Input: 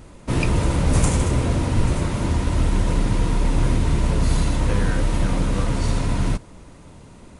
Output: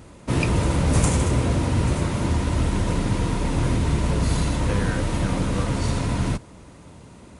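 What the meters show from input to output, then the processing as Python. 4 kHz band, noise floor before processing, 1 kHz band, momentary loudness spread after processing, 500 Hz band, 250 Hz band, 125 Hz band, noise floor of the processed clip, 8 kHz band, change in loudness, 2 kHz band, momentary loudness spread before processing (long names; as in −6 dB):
0.0 dB, −45 dBFS, 0.0 dB, 4 LU, 0.0 dB, 0.0 dB, −0.5 dB, −46 dBFS, 0.0 dB, −1.0 dB, 0.0 dB, 3 LU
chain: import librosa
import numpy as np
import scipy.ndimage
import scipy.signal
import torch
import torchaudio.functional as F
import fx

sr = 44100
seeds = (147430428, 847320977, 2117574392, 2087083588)

y = scipy.signal.sosfilt(scipy.signal.butter(2, 53.0, 'highpass', fs=sr, output='sos'), x)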